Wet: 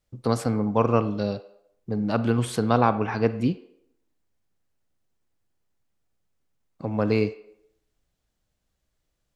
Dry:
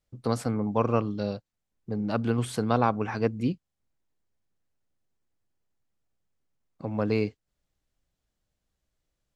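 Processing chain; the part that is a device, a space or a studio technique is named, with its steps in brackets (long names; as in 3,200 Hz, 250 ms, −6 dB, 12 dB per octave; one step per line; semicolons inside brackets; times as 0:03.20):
filtered reverb send (on a send: high-pass filter 370 Hz 24 dB per octave + low-pass filter 4,300 Hz 12 dB per octave + convolution reverb RT60 0.75 s, pre-delay 30 ms, DRR 12 dB)
0:02.81–0:03.26: on the sum: low-pass filter 5,600 Hz 24 dB per octave
level +3.5 dB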